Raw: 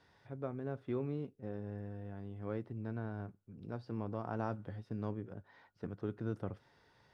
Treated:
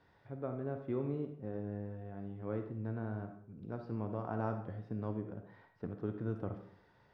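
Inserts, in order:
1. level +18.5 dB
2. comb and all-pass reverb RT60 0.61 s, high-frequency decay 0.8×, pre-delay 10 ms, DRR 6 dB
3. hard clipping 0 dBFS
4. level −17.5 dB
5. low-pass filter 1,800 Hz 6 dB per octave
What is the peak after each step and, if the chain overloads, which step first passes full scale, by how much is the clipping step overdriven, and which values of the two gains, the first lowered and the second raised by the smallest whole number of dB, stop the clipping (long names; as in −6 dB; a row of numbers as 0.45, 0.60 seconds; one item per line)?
−4.5, −4.0, −4.0, −21.5, −22.5 dBFS
no step passes full scale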